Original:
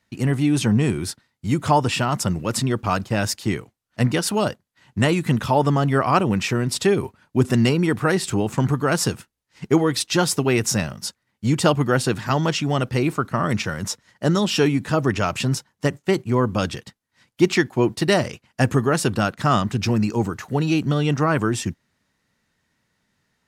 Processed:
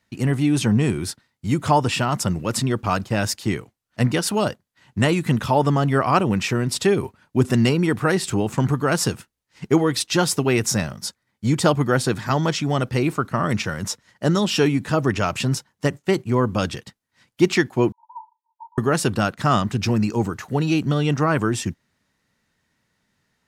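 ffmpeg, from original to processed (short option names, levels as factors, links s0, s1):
-filter_complex "[0:a]asettb=1/sr,asplit=3[s0][s1][s2];[s0]atrim=end=10.664[s3];[s1]atrim=start=10.66:end=12.89,asetpts=PTS-STARTPTS,afade=t=in:d=0.004:c=qsin,afade=t=out:st=2.226:d=0.004:c=qsin,bandreject=f=2800:w=12[s4];[s2]atrim=start=12.886[s5];[s3][s4]acrossfade=d=0.004:c1=hsin:c2=qsin[s6];[s6][s5]acrossfade=d=0.004:c1=qsin:c2=hsin,asettb=1/sr,asplit=3[s7][s8][s9];[s7]atrim=end=17.924[s10];[s8]atrim=start=17.92:end=18.78,asetpts=PTS-STARTPTS,afade=t=in:d=0.004:c=qsin,afade=t=out:st=0.856:d=0.004:c=qsin,asuperpass=centerf=930:order=12:qfactor=7.7[s11];[s9]atrim=start=18.776[s12];[s10][s11]acrossfade=d=0.004:c1=hsin:c2=qsin[s13];[s13][s12]acrossfade=d=0.004:c1=qsin:c2=hsin"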